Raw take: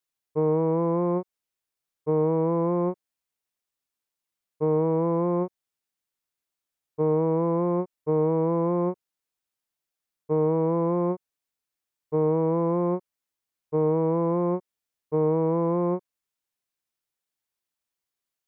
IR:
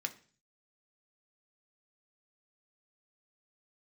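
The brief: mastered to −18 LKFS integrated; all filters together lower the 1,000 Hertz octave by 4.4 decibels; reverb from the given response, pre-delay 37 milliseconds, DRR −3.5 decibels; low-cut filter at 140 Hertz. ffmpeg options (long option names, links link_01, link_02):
-filter_complex "[0:a]highpass=140,equalizer=frequency=1000:width_type=o:gain=-5,asplit=2[link_01][link_02];[1:a]atrim=start_sample=2205,adelay=37[link_03];[link_02][link_03]afir=irnorm=-1:irlink=0,volume=2.5dB[link_04];[link_01][link_04]amix=inputs=2:normalize=0,volume=5.5dB"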